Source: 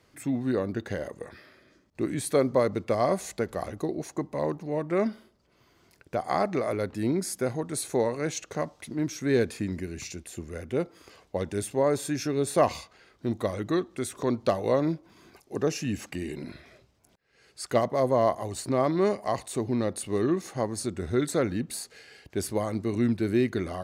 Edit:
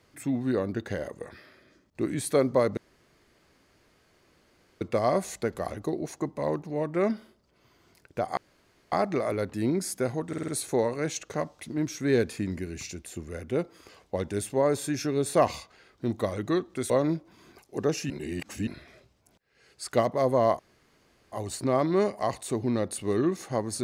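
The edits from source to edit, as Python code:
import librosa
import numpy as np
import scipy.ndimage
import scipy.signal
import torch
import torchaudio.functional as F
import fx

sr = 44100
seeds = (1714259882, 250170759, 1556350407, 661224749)

y = fx.edit(x, sr, fx.insert_room_tone(at_s=2.77, length_s=2.04),
    fx.insert_room_tone(at_s=6.33, length_s=0.55),
    fx.stutter(start_s=7.69, slice_s=0.05, count=5),
    fx.cut(start_s=14.11, length_s=0.57),
    fx.reverse_span(start_s=15.88, length_s=0.57),
    fx.insert_room_tone(at_s=18.37, length_s=0.73), tone=tone)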